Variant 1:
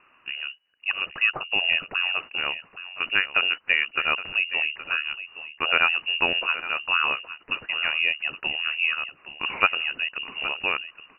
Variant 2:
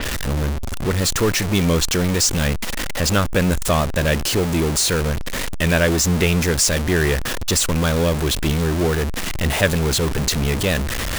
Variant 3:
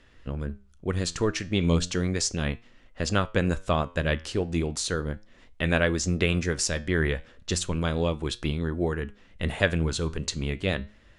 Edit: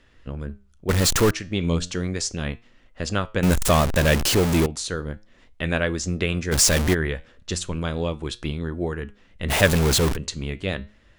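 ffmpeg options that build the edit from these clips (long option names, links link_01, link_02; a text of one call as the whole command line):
ffmpeg -i take0.wav -i take1.wav -i take2.wav -filter_complex "[1:a]asplit=4[link_01][link_02][link_03][link_04];[2:a]asplit=5[link_05][link_06][link_07][link_08][link_09];[link_05]atrim=end=0.892[link_10];[link_01]atrim=start=0.888:end=1.312[link_11];[link_06]atrim=start=1.308:end=3.432[link_12];[link_02]atrim=start=3.428:end=4.662[link_13];[link_07]atrim=start=4.658:end=6.53[link_14];[link_03]atrim=start=6.51:end=6.95[link_15];[link_08]atrim=start=6.93:end=9.52[link_16];[link_04]atrim=start=9.48:end=10.17[link_17];[link_09]atrim=start=10.13[link_18];[link_10][link_11]acrossfade=duration=0.004:curve1=hsin:curve2=hsin[link_19];[link_19][link_12]acrossfade=duration=0.004:curve1=hsin:curve2=hsin[link_20];[link_20][link_13]acrossfade=duration=0.004:curve1=hsin:curve2=hsin[link_21];[link_21][link_14]acrossfade=duration=0.004:curve1=hsin:curve2=hsin[link_22];[link_22][link_15]acrossfade=duration=0.02:curve1=tri:curve2=tri[link_23];[link_23][link_16]acrossfade=duration=0.02:curve1=tri:curve2=tri[link_24];[link_24][link_17]acrossfade=duration=0.04:curve1=tri:curve2=tri[link_25];[link_25][link_18]acrossfade=duration=0.04:curve1=tri:curve2=tri" out.wav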